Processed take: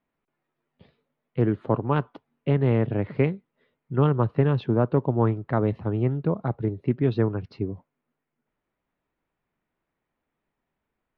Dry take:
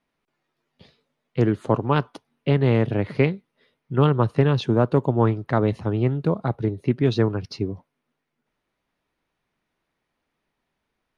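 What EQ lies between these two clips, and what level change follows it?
air absorption 380 m; -2.0 dB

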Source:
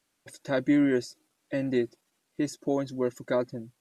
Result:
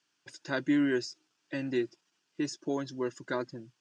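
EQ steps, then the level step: speaker cabinet 130–5800 Hz, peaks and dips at 230 Hz -6 dB, 520 Hz -9 dB, 760 Hz -6 dB, 1200 Hz -4 dB, 2100 Hz -9 dB, 3900 Hz -8 dB; tilt shelf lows -4.5 dB, about 940 Hz; notch 600 Hz, Q 12; +2.0 dB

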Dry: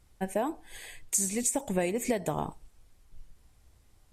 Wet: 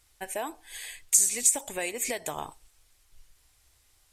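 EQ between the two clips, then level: tilt shelf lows -7.5 dB, about 1100 Hz; bell 190 Hz -12 dB 0.49 oct; 0.0 dB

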